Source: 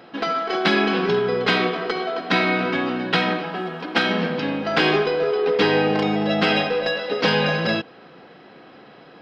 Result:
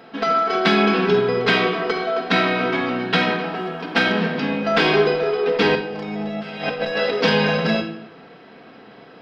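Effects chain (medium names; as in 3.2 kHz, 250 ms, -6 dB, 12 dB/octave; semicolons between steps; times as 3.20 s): 5.75–7.13 s: compressor with a negative ratio -26 dBFS, ratio -0.5; reverberation RT60 0.70 s, pre-delay 4 ms, DRR 3.5 dB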